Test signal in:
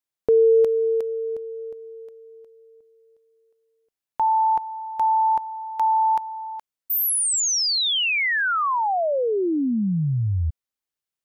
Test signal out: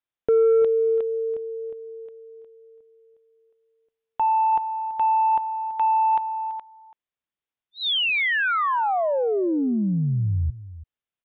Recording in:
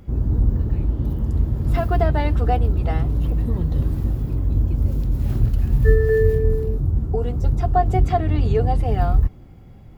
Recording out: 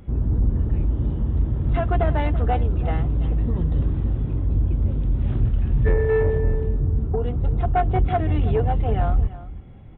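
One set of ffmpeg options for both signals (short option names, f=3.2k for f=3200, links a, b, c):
-af "aresample=8000,asoftclip=type=tanh:threshold=-12dB,aresample=44100,aecho=1:1:333:0.158"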